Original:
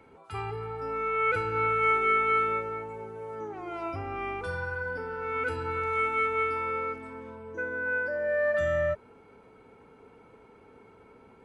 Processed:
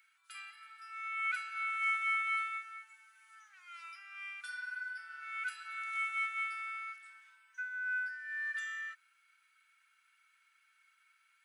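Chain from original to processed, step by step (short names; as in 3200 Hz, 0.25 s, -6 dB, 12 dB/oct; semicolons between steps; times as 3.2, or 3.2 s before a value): elliptic high-pass 1500 Hz, stop band 70 dB; high shelf 5200 Hz +11.5 dB; gain -5 dB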